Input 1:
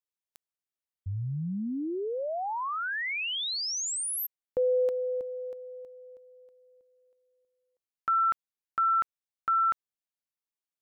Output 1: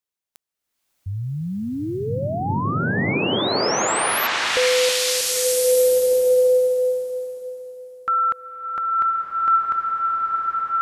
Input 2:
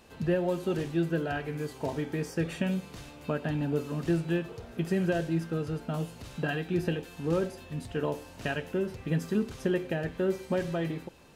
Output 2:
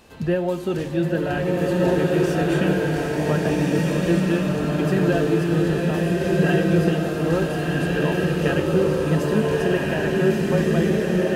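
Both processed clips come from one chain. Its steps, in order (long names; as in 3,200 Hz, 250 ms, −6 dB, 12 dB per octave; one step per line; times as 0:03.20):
slow-attack reverb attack 1,580 ms, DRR −4.5 dB
level +5.5 dB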